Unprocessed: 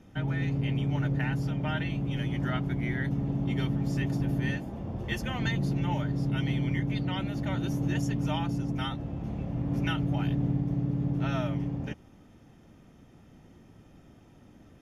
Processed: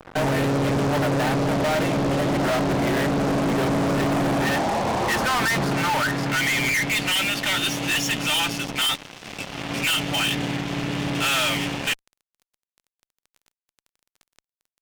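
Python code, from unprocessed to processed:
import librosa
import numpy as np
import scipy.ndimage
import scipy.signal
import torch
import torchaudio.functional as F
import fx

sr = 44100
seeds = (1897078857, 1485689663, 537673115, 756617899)

y = fx.filter_sweep_bandpass(x, sr, from_hz=610.0, to_hz=2900.0, start_s=3.92, end_s=7.36, q=2.1)
y = fx.rider(y, sr, range_db=4, speed_s=2.0)
y = fx.fuzz(y, sr, gain_db=56.0, gate_db=-60.0)
y = F.gain(torch.from_numpy(y), -7.0).numpy()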